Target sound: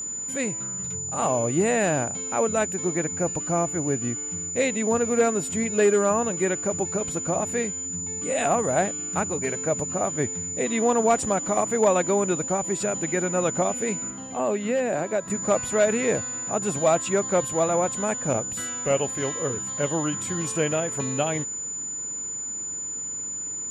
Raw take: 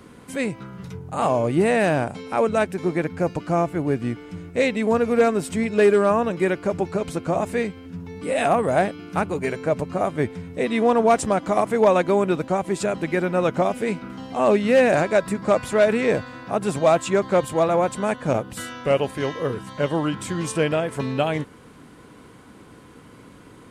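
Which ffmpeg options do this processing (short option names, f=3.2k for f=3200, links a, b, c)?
-filter_complex "[0:a]aeval=exprs='val(0)+0.0501*sin(2*PI*7000*n/s)':c=same,asettb=1/sr,asplit=3[a][b][c];[a]atrim=end=14.104[d];[b]atrim=start=14.1:end=15.3,asetpts=PTS-STARTPTS,afade=t=in:d=0.004:c=qsin,afade=t=out:st=1.196:d=0.004:c=qsin,acrossover=split=150|990|3600[e][f][g][h];[e]acompressor=threshold=-47dB:ratio=4[i];[f]acompressor=threshold=-19dB:ratio=4[j];[g]acompressor=threshold=-33dB:ratio=4[k];[h]acompressor=threshold=-40dB:ratio=4[l];[i][j][k][l]amix=inputs=4:normalize=0[m];[c]atrim=start=15.296[n];[d][m]acrossfade=d=0.004:c1=hsin:c2=qsin[o];[o][n]acrossfade=d=0.004:c1=qsin:c2=hsin,volume=-3.5dB"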